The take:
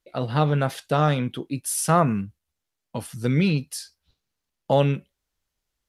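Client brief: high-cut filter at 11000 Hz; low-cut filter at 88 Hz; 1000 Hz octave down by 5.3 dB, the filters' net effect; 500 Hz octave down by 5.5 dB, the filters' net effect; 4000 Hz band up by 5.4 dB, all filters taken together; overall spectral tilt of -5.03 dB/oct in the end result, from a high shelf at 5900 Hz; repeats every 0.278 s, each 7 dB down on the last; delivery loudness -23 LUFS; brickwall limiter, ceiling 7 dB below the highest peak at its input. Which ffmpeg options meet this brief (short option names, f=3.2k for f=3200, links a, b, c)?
-af "highpass=88,lowpass=11k,equalizer=f=500:t=o:g=-5,equalizer=f=1k:t=o:g=-6,equalizer=f=4k:t=o:g=8.5,highshelf=f=5.9k:g=-4,alimiter=limit=-15dB:level=0:latency=1,aecho=1:1:278|556|834|1112|1390:0.447|0.201|0.0905|0.0407|0.0183,volume=4.5dB"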